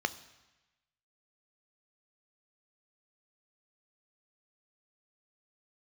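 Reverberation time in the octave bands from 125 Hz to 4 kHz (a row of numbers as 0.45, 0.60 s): 1.2, 1.0, 1.0, 1.1, 1.2, 1.1 s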